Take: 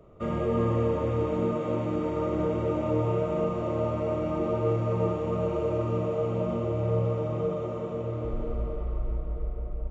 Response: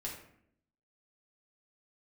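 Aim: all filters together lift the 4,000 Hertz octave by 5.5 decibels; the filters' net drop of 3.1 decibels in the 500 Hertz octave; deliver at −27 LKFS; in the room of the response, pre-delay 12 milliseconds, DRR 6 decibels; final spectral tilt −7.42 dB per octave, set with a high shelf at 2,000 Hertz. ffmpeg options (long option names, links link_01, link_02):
-filter_complex "[0:a]equalizer=frequency=500:width_type=o:gain=-4,highshelf=frequency=2000:gain=4,equalizer=frequency=4000:width_type=o:gain=4,asplit=2[link_01][link_02];[1:a]atrim=start_sample=2205,adelay=12[link_03];[link_02][link_03]afir=irnorm=-1:irlink=0,volume=-5.5dB[link_04];[link_01][link_04]amix=inputs=2:normalize=0,volume=2.5dB"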